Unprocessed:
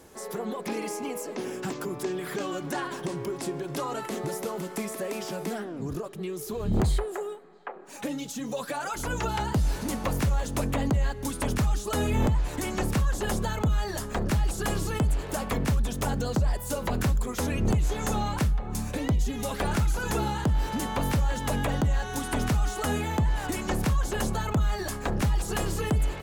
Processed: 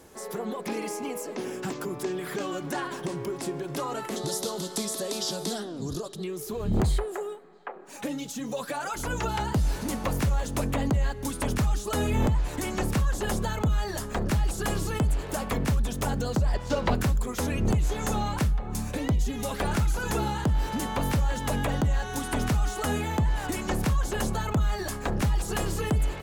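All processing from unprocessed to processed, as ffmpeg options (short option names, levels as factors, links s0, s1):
-filter_complex "[0:a]asettb=1/sr,asplit=3[s0][s1][s2];[s0]atrim=end=4.164[s3];[s1]atrim=start=4.16:end=6.24,asetpts=PTS-STARTPTS,afade=t=in:d=0.004:c=qsin,afade=t=out:st=2.076:d=0.004:c=qsin,lowpass=11000,highshelf=f=3000:t=q:w=3:g=8[s4];[s2]atrim=start=6.236[s5];[s3][s4]acrossfade=d=0.004:c1=hsin:c2=qsin[s6];[s6][s5]acrossfade=d=0.004:c1=qsin:c2=hsin,asettb=1/sr,asplit=3[s7][s8][s9];[s7]atrim=end=16.544[s10];[s8]atrim=start=16.54:end=16.95,asetpts=PTS-STARTPTS,afade=t=in:d=0.004:c=qsin,afade=t=out:st=0.406:d=0.004:c=qsin,lowpass=f=5400:w=0.5412,lowpass=f=5400:w=1.3066,acontrast=32,aeval=exprs='sgn(val(0))*max(abs(val(0))-0.00841,0)':c=same[s11];[s9]atrim=start=16.946[s12];[s10][s11]acrossfade=d=0.004:c1=hsin:c2=qsin[s13];[s13][s12]acrossfade=d=0.004:c1=qsin:c2=hsin"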